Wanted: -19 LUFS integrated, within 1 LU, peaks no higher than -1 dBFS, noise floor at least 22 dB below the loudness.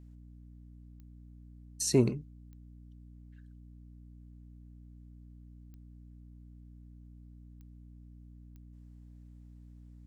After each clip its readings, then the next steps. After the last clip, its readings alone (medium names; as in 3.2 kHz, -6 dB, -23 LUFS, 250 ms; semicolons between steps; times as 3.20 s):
clicks found 5; hum 60 Hz; highest harmonic 300 Hz; hum level -48 dBFS; loudness -29.5 LUFS; peak level -13.0 dBFS; loudness target -19.0 LUFS
-> de-click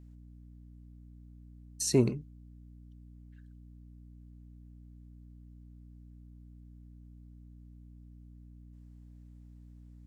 clicks found 0; hum 60 Hz; highest harmonic 300 Hz; hum level -48 dBFS
-> de-hum 60 Hz, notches 5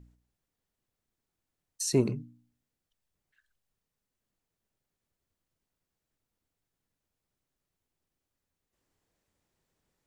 hum not found; loudness -30.0 LUFS; peak level -13.5 dBFS; loudness target -19.0 LUFS
-> trim +11 dB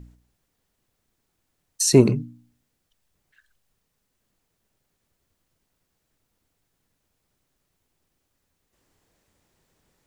loudness -19.0 LUFS; peak level -2.5 dBFS; noise floor -76 dBFS